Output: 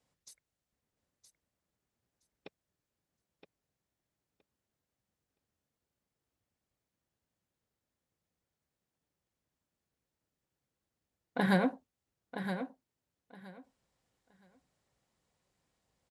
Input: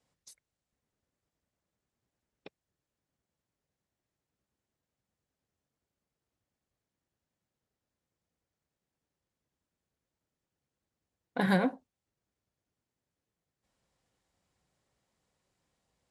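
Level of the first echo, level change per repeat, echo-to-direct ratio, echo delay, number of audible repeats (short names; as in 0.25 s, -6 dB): -9.0 dB, -15.0 dB, -9.0 dB, 0.969 s, 2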